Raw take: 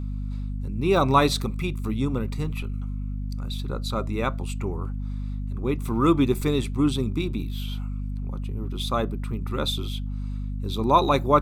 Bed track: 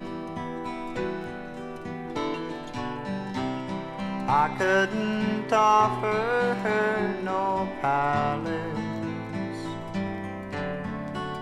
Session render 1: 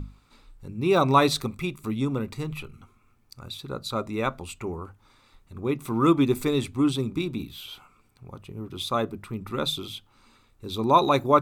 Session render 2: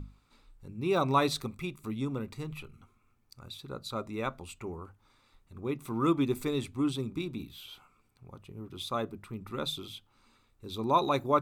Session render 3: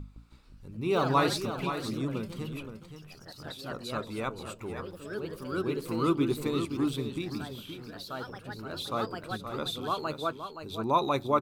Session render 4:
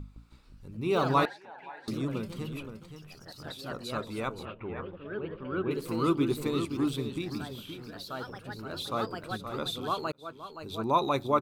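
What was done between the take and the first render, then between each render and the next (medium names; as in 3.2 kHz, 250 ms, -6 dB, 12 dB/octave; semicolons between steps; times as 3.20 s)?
hum notches 50/100/150/200/250 Hz
trim -7 dB
ever faster or slower copies 162 ms, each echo +2 st, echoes 3, each echo -6 dB; on a send: delay 522 ms -9 dB
1.25–1.88 s: two resonant band-passes 1.2 kHz, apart 0.96 oct; 4.45–5.71 s: steep low-pass 3.1 kHz; 10.12–10.62 s: fade in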